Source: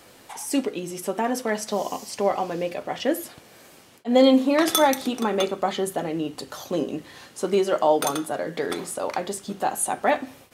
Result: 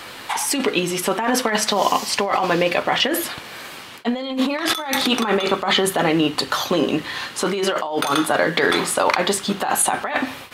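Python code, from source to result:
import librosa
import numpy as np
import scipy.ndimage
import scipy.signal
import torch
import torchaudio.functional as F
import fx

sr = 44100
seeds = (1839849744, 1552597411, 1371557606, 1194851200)

y = fx.band_shelf(x, sr, hz=2000.0, db=8.5, octaves=2.6)
y = fx.over_compress(y, sr, threshold_db=-25.0, ratio=-1.0)
y = y * 10.0 ** (5.5 / 20.0)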